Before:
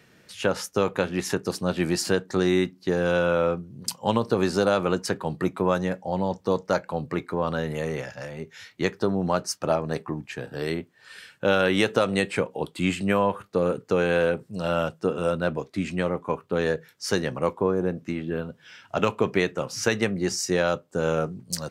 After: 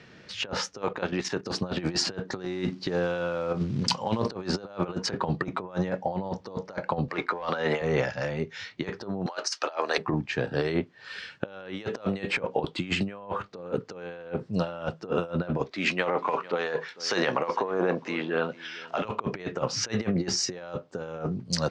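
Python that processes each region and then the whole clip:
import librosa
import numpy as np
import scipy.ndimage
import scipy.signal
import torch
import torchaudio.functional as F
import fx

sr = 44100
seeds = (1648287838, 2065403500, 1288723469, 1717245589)

y = fx.chain(x, sr, fx.low_shelf(hz=160.0, db=-6.0),
    fx.level_steps(step_db=11), at=(0.82, 1.46))
y = fx.chain(y, sr, fx.over_compress(threshold_db=-29.0, ratio=-0.5),
    fx.quant_companded(bits=6), at=(2.45, 4.28))
y = fx.chain(y, sr, fx.weighting(curve='A'),
    fx.leveller(passes=1),
    fx.band_squash(depth_pct=100), at=(7.08, 7.82))
y = fx.chain(y, sr, fx.highpass(hz=310.0, slope=24),
    fx.tilt_shelf(db=-9.5, hz=790.0), at=(9.26, 9.98))
y = fx.chain(y, sr, fx.transient(attack_db=-4, sustain_db=7),
    fx.weighting(curve='A'),
    fx.echo_single(ms=449, db=-21.0), at=(15.71, 19.05))
y = scipy.signal.sosfilt(scipy.signal.butter(4, 5600.0, 'lowpass', fs=sr, output='sos'), y)
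y = fx.dynamic_eq(y, sr, hz=810.0, q=0.74, threshold_db=-36.0, ratio=4.0, max_db=4)
y = fx.over_compress(y, sr, threshold_db=-28.0, ratio=-0.5)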